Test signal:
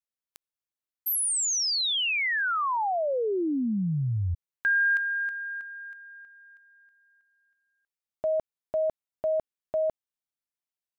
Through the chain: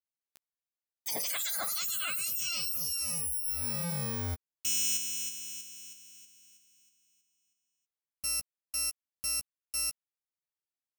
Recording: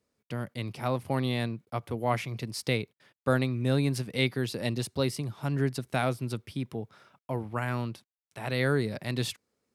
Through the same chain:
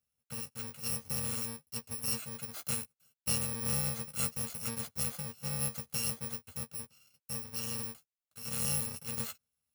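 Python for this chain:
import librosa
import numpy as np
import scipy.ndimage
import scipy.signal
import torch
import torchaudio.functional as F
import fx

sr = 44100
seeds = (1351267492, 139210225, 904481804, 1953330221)

y = fx.bit_reversed(x, sr, seeds[0], block=128)
y = fx.doubler(y, sr, ms=13.0, db=-7)
y = y * 10.0 ** (-7.5 / 20.0)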